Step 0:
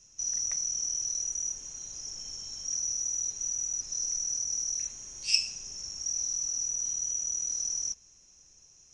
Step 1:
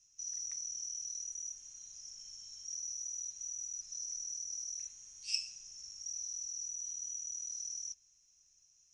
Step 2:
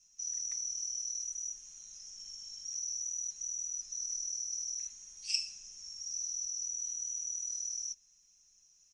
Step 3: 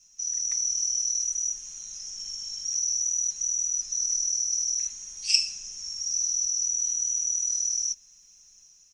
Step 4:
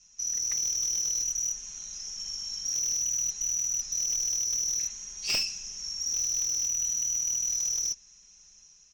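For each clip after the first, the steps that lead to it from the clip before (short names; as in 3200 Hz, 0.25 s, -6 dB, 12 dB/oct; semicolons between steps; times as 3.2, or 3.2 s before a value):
passive tone stack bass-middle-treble 5-5-5; gain -3.5 dB
comb 4.9 ms, depth 93%
AGC gain up to 3.5 dB; gain +7.5 dB
air absorption 82 m; tube stage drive 19 dB, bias 0.25; slew limiter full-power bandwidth 170 Hz; gain +5 dB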